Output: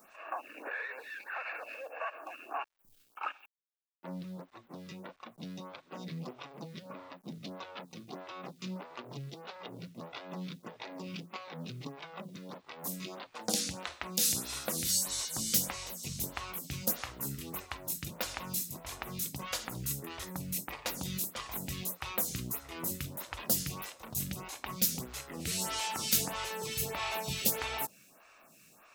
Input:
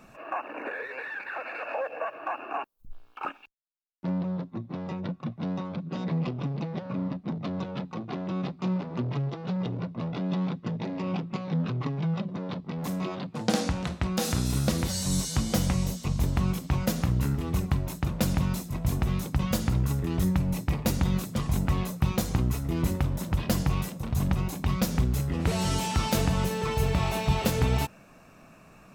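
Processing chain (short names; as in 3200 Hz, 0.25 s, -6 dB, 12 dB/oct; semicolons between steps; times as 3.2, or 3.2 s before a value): tilt +3.5 dB/oct; bit-crush 10-bit; photocell phaser 1.6 Hz; gain -3.5 dB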